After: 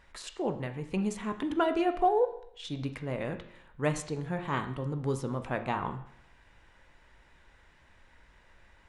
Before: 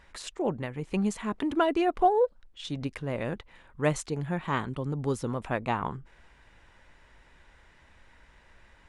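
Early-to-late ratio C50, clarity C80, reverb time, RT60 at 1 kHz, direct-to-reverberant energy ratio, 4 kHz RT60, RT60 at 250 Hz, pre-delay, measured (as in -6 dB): 11.5 dB, 14.0 dB, 0.70 s, 0.70 s, 7.5 dB, 0.65 s, 0.70 s, 17 ms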